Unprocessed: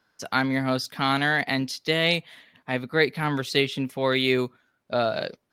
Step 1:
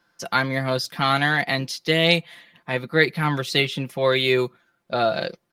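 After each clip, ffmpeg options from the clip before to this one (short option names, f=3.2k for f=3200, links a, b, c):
-af "aecho=1:1:5.8:0.56,volume=2dB"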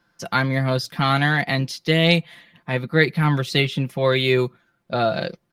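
-af "bass=f=250:g=7,treble=f=4k:g=-2"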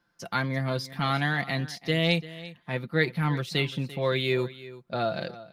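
-af "aecho=1:1:342:0.141,volume=-7.5dB"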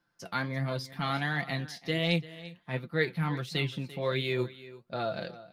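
-af "flanger=delay=5.7:depth=6.7:regen=64:speed=1.4:shape=triangular"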